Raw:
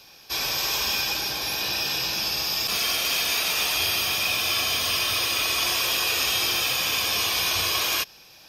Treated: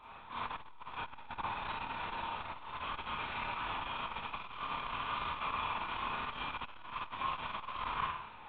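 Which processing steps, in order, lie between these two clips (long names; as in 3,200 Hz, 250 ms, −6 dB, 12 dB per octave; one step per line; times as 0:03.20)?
reversed playback
downward compressor 8 to 1, threshold −34 dBFS, peak gain reduction 13 dB
reversed playback
log-companded quantiser 4 bits
resonant band-pass 1,000 Hz, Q 3.4
linear-prediction vocoder at 8 kHz whisper
echo ahead of the sound 109 ms −20 dB
four-comb reverb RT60 0.6 s, combs from 26 ms, DRR −6.5 dB
saturating transformer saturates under 210 Hz
level +6 dB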